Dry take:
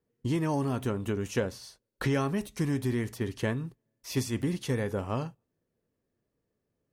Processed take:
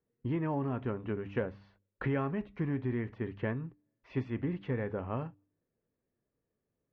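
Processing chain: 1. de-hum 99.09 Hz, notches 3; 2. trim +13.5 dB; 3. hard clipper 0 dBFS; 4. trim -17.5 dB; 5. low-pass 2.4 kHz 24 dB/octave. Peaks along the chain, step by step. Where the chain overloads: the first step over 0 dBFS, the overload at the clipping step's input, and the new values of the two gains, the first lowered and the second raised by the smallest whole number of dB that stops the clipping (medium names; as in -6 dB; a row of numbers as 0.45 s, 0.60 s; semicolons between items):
-16.5 dBFS, -3.0 dBFS, -3.0 dBFS, -20.5 dBFS, -20.5 dBFS; nothing clips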